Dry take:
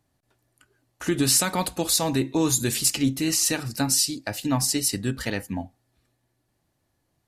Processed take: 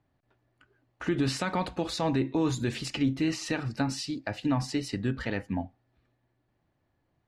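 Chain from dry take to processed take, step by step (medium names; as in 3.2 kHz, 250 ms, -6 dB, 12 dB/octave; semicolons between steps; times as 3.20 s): low-pass 2.7 kHz 12 dB/octave; peak limiter -17 dBFS, peak gain reduction 4.5 dB; trim -1 dB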